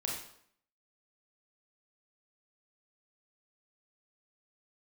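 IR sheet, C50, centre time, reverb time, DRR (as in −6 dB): 3.0 dB, 44 ms, 0.65 s, −2.5 dB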